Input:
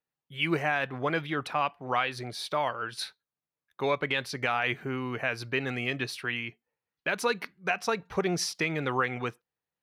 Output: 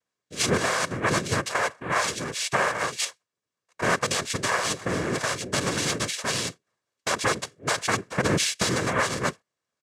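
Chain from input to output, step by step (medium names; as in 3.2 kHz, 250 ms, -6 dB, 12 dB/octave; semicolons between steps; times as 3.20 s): peak limiter -21 dBFS, peak gain reduction 5.5 dB; noise-vocoded speech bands 3; comb 1.8 ms, depth 34%; trim +7 dB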